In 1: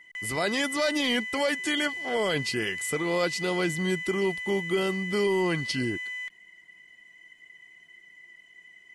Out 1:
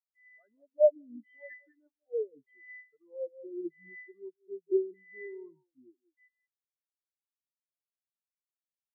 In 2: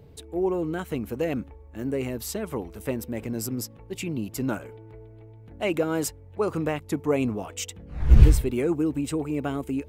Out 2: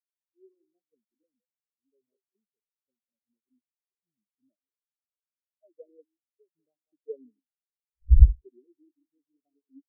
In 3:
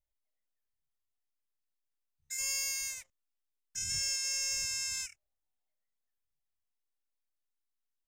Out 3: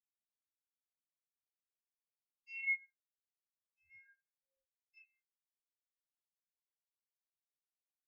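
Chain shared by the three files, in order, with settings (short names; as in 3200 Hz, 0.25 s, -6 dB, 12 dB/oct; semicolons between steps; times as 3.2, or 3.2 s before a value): speakerphone echo 0.19 s, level -6 dB; LFO low-pass saw down 0.81 Hz 290–3700 Hz; spectral expander 4:1; gain -1 dB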